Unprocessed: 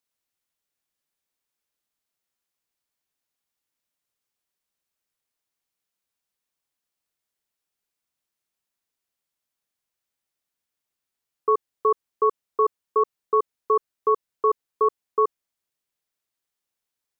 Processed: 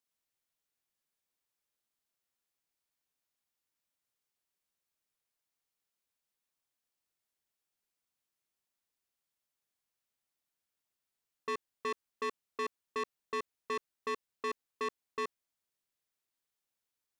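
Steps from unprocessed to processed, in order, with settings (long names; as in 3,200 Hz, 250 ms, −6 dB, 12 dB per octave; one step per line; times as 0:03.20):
soft clipping −28 dBFS, distortion −6 dB
level −4 dB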